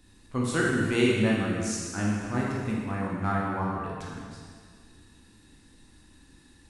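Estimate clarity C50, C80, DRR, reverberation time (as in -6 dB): -1.0 dB, 1.0 dB, -4.5 dB, 1.9 s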